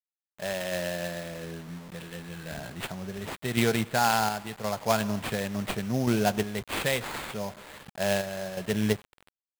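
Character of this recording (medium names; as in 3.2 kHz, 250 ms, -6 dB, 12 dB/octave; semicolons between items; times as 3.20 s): aliases and images of a low sample rate 5.8 kHz, jitter 20%; random-step tremolo 2.8 Hz, depth 70%; a quantiser's noise floor 8-bit, dither none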